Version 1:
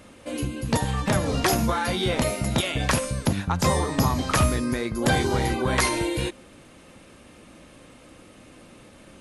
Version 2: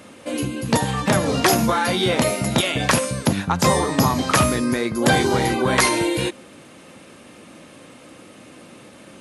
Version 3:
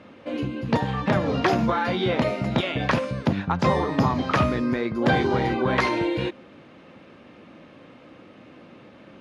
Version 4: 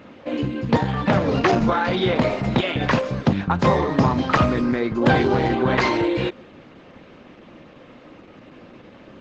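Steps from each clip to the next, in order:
high-pass 130 Hz 12 dB/octave; trim +5.5 dB
distance through air 250 m; trim -2.5 dB
trim +4 dB; Opus 12 kbps 48 kHz

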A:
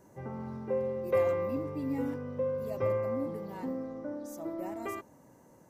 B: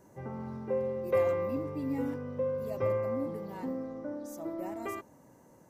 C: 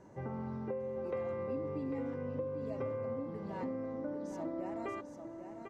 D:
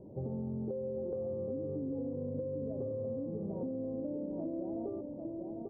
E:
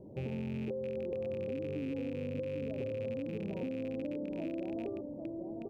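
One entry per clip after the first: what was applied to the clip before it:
no audible change
compression, threshold -38 dBFS, peak gain reduction 14.5 dB; distance through air 110 m; delay 797 ms -7.5 dB; trim +2 dB
inverse Chebyshev low-pass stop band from 2 kHz, stop band 60 dB; in parallel at -2 dB: peak limiter -36 dBFS, peak gain reduction 7.5 dB; on the sum: compression, threshold -36 dBFS, peak gain reduction 5.5 dB; trim +2 dB
rattle on loud lows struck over -41 dBFS, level -41 dBFS

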